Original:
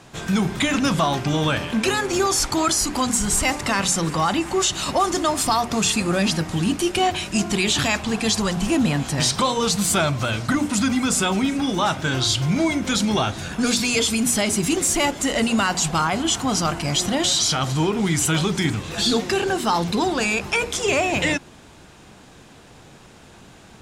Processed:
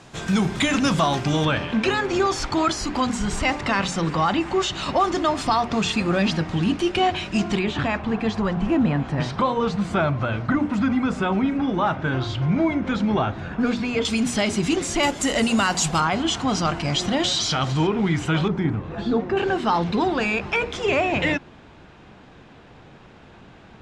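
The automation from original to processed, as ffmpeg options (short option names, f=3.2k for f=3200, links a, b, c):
-af "asetnsamples=n=441:p=0,asendcmd='1.45 lowpass f 3700;7.59 lowpass f 1800;14.05 lowpass f 4700;15.03 lowpass f 10000;16 lowpass f 4600;17.87 lowpass f 2600;18.48 lowpass f 1200;19.37 lowpass f 3000',lowpass=8.7k"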